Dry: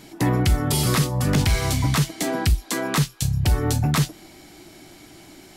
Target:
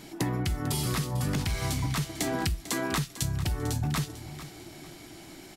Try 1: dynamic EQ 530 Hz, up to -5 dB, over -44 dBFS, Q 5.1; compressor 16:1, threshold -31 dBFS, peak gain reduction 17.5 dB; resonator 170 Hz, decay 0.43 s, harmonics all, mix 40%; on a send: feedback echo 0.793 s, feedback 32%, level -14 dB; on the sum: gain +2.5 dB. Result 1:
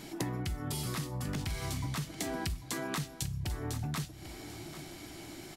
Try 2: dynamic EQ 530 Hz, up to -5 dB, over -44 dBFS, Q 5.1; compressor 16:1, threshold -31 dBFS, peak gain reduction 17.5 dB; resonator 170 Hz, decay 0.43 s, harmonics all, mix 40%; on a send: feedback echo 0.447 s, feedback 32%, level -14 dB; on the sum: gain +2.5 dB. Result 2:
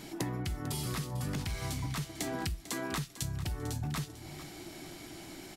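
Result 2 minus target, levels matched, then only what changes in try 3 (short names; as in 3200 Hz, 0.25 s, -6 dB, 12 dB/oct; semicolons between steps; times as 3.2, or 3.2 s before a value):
compressor: peak gain reduction +6.5 dB
change: compressor 16:1, threshold -24 dBFS, peak gain reduction 11 dB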